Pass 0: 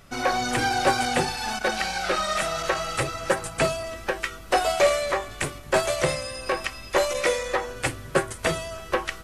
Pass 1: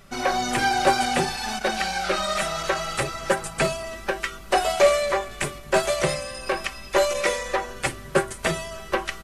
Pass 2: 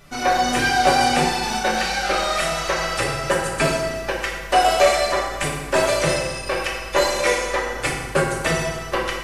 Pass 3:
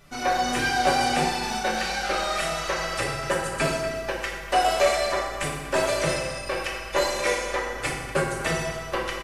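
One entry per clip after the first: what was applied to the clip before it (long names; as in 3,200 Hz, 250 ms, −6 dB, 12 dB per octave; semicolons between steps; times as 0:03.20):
comb filter 5.1 ms, depth 46%
feedback delay network reverb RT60 1.4 s, low-frequency decay 1×, high-frequency decay 0.7×, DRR −2.5 dB
far-end echo of a speakerphone 240 ms, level −13 dB; level −5 dB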